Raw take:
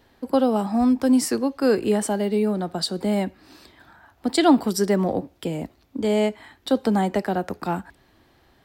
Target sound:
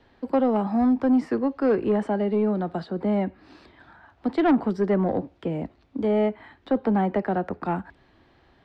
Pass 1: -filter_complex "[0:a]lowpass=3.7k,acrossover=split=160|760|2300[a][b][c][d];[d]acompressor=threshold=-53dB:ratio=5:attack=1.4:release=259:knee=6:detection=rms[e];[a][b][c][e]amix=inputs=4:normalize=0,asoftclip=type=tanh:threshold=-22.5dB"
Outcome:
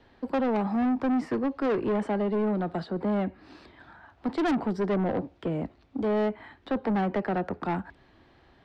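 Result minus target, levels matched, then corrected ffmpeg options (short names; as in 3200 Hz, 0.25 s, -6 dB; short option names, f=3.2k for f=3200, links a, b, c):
soft clip: distortion +8 dB
-filter_complex "[0:a]lowpass=3.7k,acrossover=split=160|760|2300[a][b][c][d];[d]acompressor=threshold=-53dB:ratio=5:attack=1.4:release=259:knee=6:detection=rms[e];[a][b][c][e]amix=inputs=4:normalize=0,asoftclip=type=tanh:threshold=-13.5dB"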